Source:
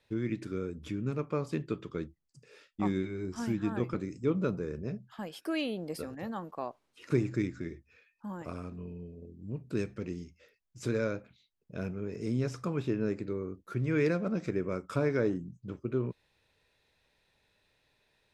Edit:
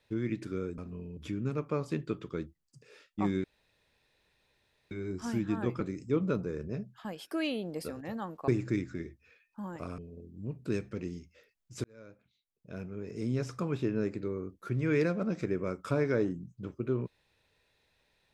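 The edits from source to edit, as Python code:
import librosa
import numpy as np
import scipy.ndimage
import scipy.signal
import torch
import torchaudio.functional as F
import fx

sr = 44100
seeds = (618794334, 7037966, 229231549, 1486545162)

y = fx.edit(x, sr, fx.insert_room_tone(at_s=3.05, length_s=1.47),
    fx.cut(start_s=6.62, length_s=0.52),
    fx.move(start_s=8.64, length_s=0.39, to_s=0.78),
    fx.fade_in_span(start_s=10.89, length_s=1.66), tone=tone)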